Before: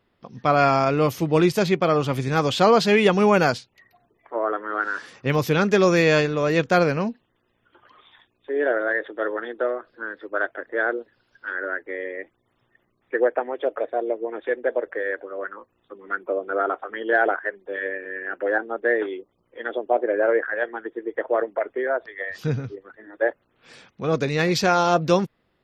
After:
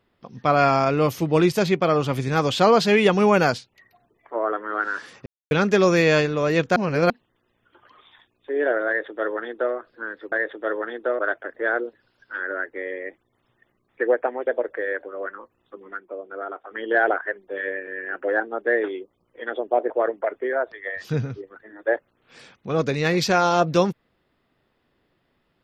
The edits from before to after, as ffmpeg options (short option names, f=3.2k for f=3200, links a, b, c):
-filter_complex "[0:a]asplit=11[a][b][c][d][e][f][g][h][i][j][k];[a]atrim=end=5.26,asetpts=PTS-STARTPTS,afade=t=out:st=5.256:d=0.004:c=hsin[l];[b]atrim=start=5.26:end=5.51,asetpts=PTS-STARTPTS,volume=0[m];[c]atrim=start=5.51:end=6.762,asetpts=PTS-STARTPTS,afade=t=in:d=0.004:c=hsin[n];[d]atrim=start=6.758:end=7.102,asetpts=PTS-STARTPTS,areverse[o];[e]atrim=start=7.098:end=10.322[p];[f]atrim=start=8.868:end=9.742[q];[g]atrim=start=10.318:end=13.602[r];[h]atrim=start=14.648:end=16.19,asetpts=PTS-STARTPTS,afade=t=out:st=1.402:d=0.14:c=qua:silence=0.354813[s];[i]atrim=start=16.19:end=16.8,asetpts=PTS-STARTPTS,volume=-9dB[t];[j]atrim=start=16.8:end=20.082,asetpts=PTS-STARTPTS,afade=t=in:d=0.14:c=qua:silence=0.354813[u];[k]atrim=start=21.238[v];[l][m][n]concat=n=3:v=0:a=1[w];[w][o]acrossfade=d=0.004:c1=hsin:c2=hsin[x];[x][p]acrossfade=d=0.004:c1=hsin:c2=hsin[y];[y][q]acrossfade=d=0.004:c1=hsin:c2=hsin[z];[z][r]acrossfade=d=0.004:c1=hsin:c2=hsin[aa];[s][t][u]concat=n=3:v=0:a=1[ab];[aa][ab]acrossfade=d=0.004:c1=hsin:c2=hsin[ac];[ac][v]acrossfade=d=0.004:c1=hsin:c2=hsin"